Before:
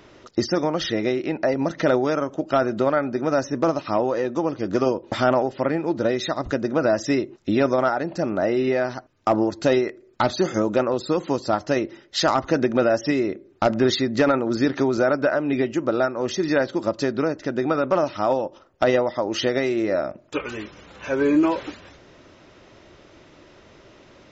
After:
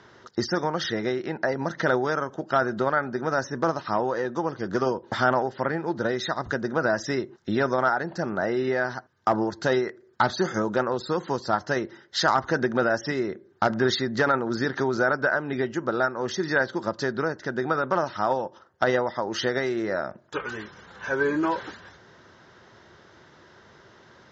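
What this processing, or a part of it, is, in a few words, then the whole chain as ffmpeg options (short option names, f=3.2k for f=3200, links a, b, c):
car door speaker: -af "highpass=84,equalizer=f=290:t=q:w=4:g=-9,equalizer=f=590:t=q:w=4:g=-6,equalizer=f=920:t=q:w=4:g=3,equalizer=f=1.6k:t=q:w=4:g=8,equalizer=f=2.5k:t=q:w=4:g=-10,lowpass=f=6.8k:w=0.5412,lowpass=f=6.8k:w=1.3066,volume=-1.5dB"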